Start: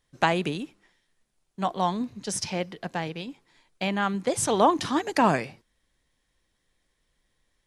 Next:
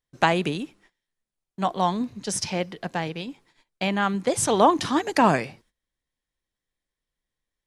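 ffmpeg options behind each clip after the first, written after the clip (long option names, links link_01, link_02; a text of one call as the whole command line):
ffmpeg -i in.wav -af "agate=range=-16dB:threshold=-59dB:ratio=16:detection=peak,volume=2.5dB" out.wav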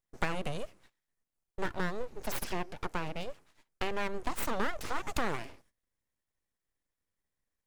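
ffmpeg -i in.wav -af "equalizer=frequency=3600:width_type=o:width=0.88:gain=-9,acompressor=threshold=-30dB:ratio=3,aeval=exprs='abs(val(0))':channel_layout=same" out.wav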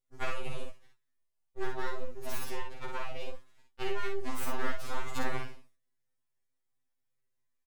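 ffmpeg -i in.wav -filter_complex "[0:a]asplit=2[link_01][link_02];[link_02]aecho=0:1:53|77:0.668|0.15[link_03];[link_01][link_03]amix=inputs=2:normalize=0,afftfilt=real='re*2.45*eq(mod(b,6),0)':imag='im*2.45*eq(mod(b,6),0)':win_size=2048:overlap=0.75,volume=-1.5dB" out.wav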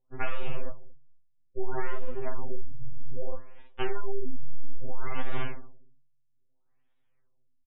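ffmpeg -i in.wav -filter_complex "[0:a]asoftclip=type=tanh:threshold=-27dB,asplit=2[link_01][link_02];[link_02]adelay=235,lowpass=frequency=1500:poles=1,volume=-21.5dB,asplit=2[link_03][link_04];[link_04]adelay=235,lowpass=frequency=1500:poles=1,volume=0.25[link_05];[link_01][link_03][link_05]amix=inputs=3:normalize=0,afftfilt=real='re*lt(b*sr/1024,210*pow(3900/210,0.5+0.5*sin(2*PI*0.61*pts/sr)))':imag='im*lt(b*sr/1024,210*pow(3900/210,0.5+0.5*sin(2*PI*0.61*pts/sr)))':win_size=1024:overlap=0.75,volume=11.5dB" out.wav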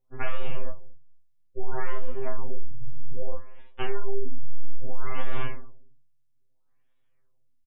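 ffmpeg -i in.wav -filter_complex "[0:a]asplit=2[link_01][link_02];[link_02]adelay=25,volume=-5.5dB[link_03];[link_01][link_03]amix=inputs=2:normalize=0" out.wav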